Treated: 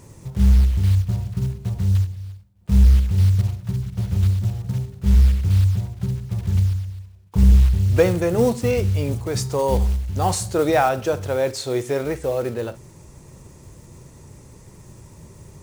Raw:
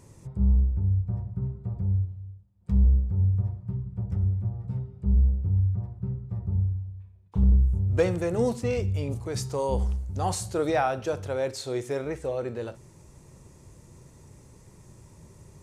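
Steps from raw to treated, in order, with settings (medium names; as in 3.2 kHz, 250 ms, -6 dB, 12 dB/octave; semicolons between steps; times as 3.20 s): block-companded coder 5-bit; trim +7 dB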